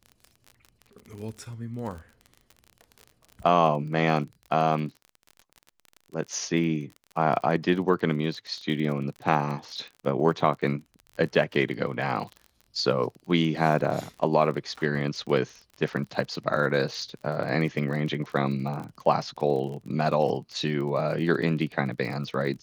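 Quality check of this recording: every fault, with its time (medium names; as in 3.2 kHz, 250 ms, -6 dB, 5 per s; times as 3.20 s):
crackle 35 per s -35 dBFS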